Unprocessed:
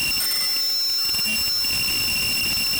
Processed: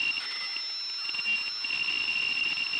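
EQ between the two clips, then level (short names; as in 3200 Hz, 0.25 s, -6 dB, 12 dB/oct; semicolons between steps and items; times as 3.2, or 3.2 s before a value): speaker cabinet 170–3800 Hz, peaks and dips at 210 Hz -7 dB, 600 Hz -9 dB, 1600 Hz -3 dB; tilt +2.5 dB/oct; -5.5 dB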